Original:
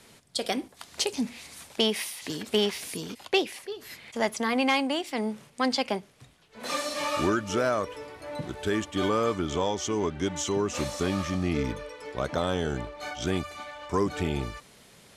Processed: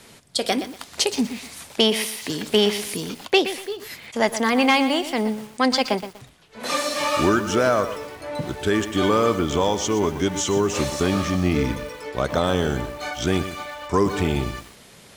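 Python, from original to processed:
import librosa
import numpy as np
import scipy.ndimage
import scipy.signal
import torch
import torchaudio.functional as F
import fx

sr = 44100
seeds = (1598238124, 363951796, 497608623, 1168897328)

y = fx.echo_crushed(x, sr, ms=121, feedback_pct=35, bits=7, wet_db=-11.0)
y = y * librosa.db_to_amplitude(6.5)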